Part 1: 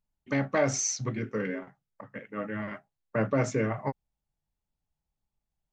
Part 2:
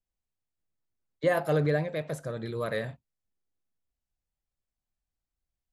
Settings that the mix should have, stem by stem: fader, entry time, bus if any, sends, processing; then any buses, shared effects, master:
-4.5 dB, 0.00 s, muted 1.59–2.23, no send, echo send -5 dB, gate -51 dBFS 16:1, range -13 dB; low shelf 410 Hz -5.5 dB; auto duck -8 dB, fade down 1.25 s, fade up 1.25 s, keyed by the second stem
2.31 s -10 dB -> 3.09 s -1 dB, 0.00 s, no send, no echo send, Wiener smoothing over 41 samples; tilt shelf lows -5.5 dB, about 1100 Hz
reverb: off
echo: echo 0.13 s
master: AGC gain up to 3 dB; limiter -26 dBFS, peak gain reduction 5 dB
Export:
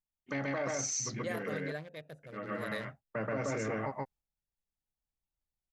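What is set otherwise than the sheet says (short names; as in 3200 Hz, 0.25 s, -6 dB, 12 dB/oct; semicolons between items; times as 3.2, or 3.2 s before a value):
stem 1 -4.5 dB -> +2.0 dB; master: missing AGC gain up to 3 dB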